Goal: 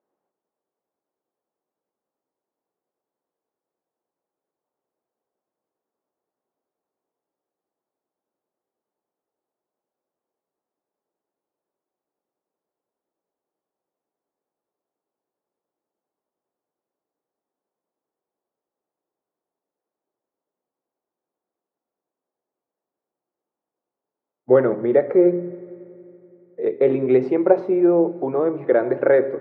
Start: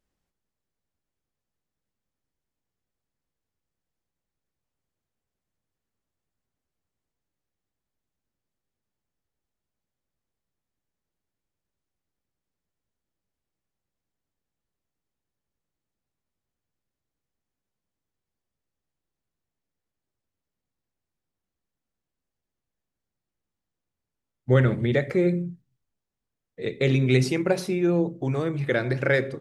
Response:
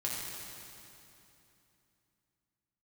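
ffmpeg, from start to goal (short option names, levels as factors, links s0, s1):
-filter_complex "[0:a]asuperpass=centerf=590:order=4:qfactor=0.83,asplit=2[s0][s1];[1:a]atrim=start_sample=2205[s2];[s1][s2]afir=irnorm=-1:irlink=0,volume=0.106[s3];[s0][s3]amix=inputs=2:normalize=0,volume=2.66"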